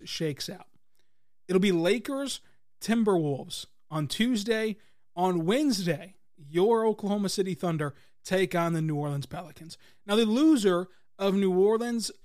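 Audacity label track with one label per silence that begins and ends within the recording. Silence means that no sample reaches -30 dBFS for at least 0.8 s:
0.520000	1.500000	silence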